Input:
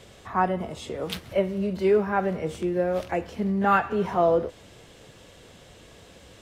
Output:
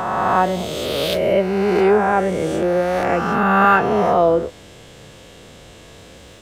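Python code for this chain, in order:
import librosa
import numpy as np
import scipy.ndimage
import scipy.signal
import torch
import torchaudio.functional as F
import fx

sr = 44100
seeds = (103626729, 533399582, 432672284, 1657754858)

y = fx.spec_swells(x, sr, rise_s=2.34)
y = y * 10.0 ** (4.0 / 20.0)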